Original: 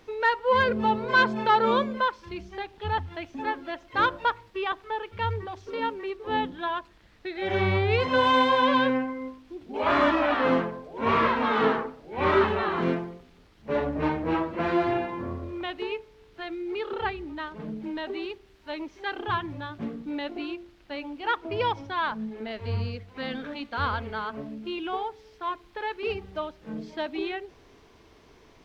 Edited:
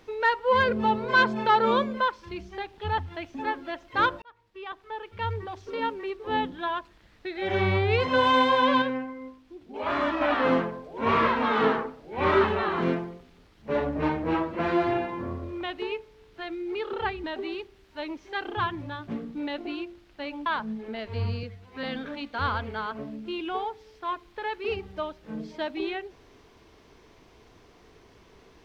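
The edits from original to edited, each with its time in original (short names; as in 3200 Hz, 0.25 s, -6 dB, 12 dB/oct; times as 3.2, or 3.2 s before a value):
4.22–5.53 fade in
8.82–10.21 gain -5 dB
17.24–17.95 cut
21.17–21.98 cut
22.95–23.22 stretch 1.5×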